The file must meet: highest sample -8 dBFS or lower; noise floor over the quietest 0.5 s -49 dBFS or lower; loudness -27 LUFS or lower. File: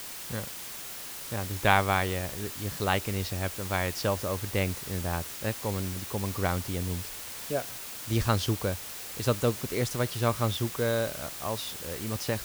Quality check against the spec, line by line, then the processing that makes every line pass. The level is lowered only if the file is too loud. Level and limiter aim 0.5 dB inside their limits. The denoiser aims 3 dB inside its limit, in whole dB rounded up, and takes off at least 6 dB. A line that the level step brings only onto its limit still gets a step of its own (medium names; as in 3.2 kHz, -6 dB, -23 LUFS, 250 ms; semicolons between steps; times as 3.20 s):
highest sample -6.0 dBFS: fail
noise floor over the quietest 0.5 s -40 dBFS: fail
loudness -30.5 LUFS: pass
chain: noise reduction 12 dB, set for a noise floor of -40 dBFS; peak limiter -8.5 dBFS